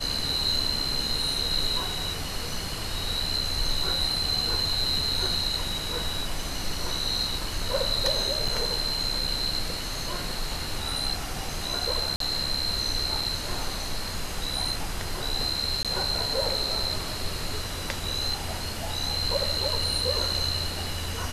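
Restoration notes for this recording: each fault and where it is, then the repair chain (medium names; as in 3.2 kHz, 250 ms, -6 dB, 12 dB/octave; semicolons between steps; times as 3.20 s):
8.48 s: dropout 3.7 ms
12.16–12.20 s: dropout 43 ms
15.83–15.85 s: dropout 17 ms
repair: interpolate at 8.48 s, 3.7 ms; interpolate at 12.16 s, 43 ms; interpolate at 15.83 s, 17 ms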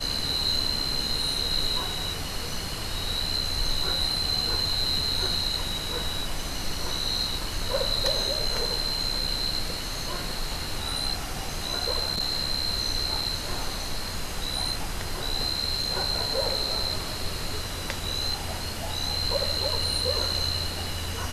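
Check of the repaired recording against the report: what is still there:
nothing left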